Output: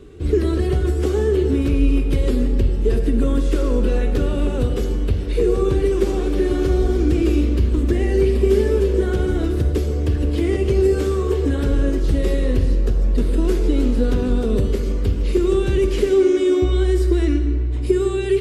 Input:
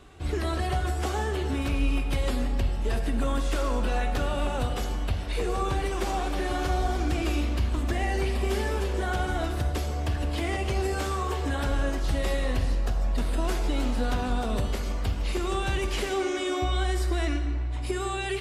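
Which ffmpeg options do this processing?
-af "lowshelf=f=560:t=q:w=3:g=8.5"

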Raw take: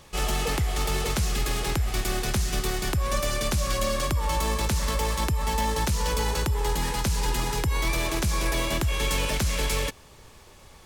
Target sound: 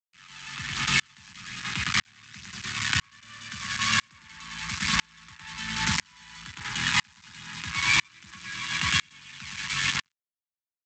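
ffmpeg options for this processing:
-filter_complex "[0:a]acrossover=split=170[s0][s1];[s0]acompressor=threshold=0.00708:ratio=2[s2];[s2][s1]amix=inputs=2:normalize=0,bass=f=250:g=3,treble=f=4000:g=-5,aecho=1:1:110|220|330|440|550|660|770|880:0.596|0.345|0.2|0.116|0.0674|0.0391|0.0227|0.0132,aphaser=in_gain=1:out_gain=1:delay=1.3:decay=0.4:speed=1.2:type=triangular,aresample=16000,acrusher=bits=3:mix=0:aa=0.5,aresample=44100,firequalizer=gain_entry='entry(220,0);entry(490,-26);entry(1000,2);entry(1700,11);entry(5200,8)':delay=0.05:min_phase=1,acompressor=mode=upward:threshold=0.0316:ratio=2.5,highpass=f=81:w=0.5412,highpass=f=81:w=1.3066,aeval=exprs='val(0)*pow(10,-38*if(lt(mod(-1*n/s,1),2*abs(-1)/1000),1-mod(-1*n/s,1)/(2*abs(-1)/1000),(mod(-1*n/s,1)-2*abs(-1)/1000)/(1-2*abs(-1)/1000))/20)':c=same"

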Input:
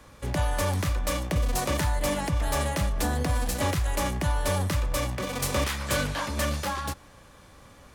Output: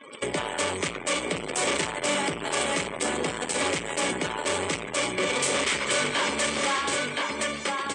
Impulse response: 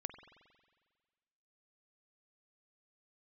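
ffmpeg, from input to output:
-filter_complex "[0:a]equalizer=f=2200:w=6:g=9.5,asplit=2[s0][s1];[1:a]atrim=start_sample=2205[s2];[s1][s2]afir=irnorm=-1:irlink=0,volume=1.68[s3];[s0][s3]amix=inputs=2:normalize=0,acrusher=bits=7:dc=4:mix=0:aa=0.000001,aecho=1:1:1020:0.355,asoftclip=type=hard:threshold=0.0708,acompressor=threshold=0.0282:ratio=6,highpass=260,equalizer=f=400:t=q:w=4:g=7,equalizer=f=740:t=q:w=4:g=-3,equalizer=f=3100:t=q:w=4:g=5,equalizer=f=8200:t=q:w=4:g=10,lowpass=f=8800:w=0.5412,lowpass=f=8800:w=1.3066,afftdn=nr=34:nf=-46,acontrast=82"

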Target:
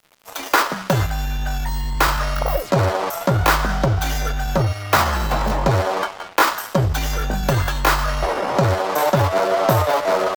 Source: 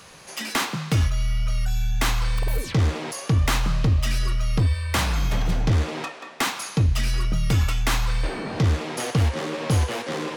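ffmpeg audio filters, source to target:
-af "firequalizer=gain_entry='entry(190,0);entry(480,14);entry(890,13);entry(2000,1);entry(4200,3);entry(7800,-2);entry(13000,12)':delay=0.05:min_phase=1,aeval=exprs='sgn(val(0))*max(abs(val(0))-0.0237,0)':c=same,asetrate=53981,aresample=44100,atempo=0.816958,volume=1.19"

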